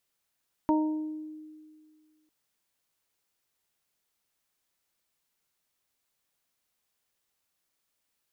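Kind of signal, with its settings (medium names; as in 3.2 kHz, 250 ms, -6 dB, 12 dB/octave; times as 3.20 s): additive tone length 1.60 s, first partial 309 Hz, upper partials -9/-4 dB, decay 2.00 s, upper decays 0.79/0.62 s, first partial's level -21 dB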